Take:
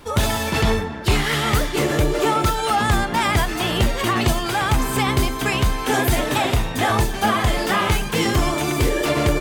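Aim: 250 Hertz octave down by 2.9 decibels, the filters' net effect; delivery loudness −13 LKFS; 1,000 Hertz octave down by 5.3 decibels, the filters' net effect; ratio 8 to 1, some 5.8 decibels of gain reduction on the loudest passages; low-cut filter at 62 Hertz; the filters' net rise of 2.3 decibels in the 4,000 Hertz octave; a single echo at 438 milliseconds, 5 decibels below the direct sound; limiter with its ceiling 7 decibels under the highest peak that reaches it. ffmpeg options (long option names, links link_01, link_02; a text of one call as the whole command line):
ffmpeg -i in.wav -af "highpass=62,equalizer=frequency=250:width_type=o:gain=-3.5,equalizer=frequency=1000:width_type=o:gain=-7,equalizer=frequency=4000:width_type=o:gain=3.5,acompressor=threshold=-21dB:ratio=8,alimiter=limit=-17dB:level=0:latency=1,aecho=1:1:438:0.562,volume=12.5dB" out.wav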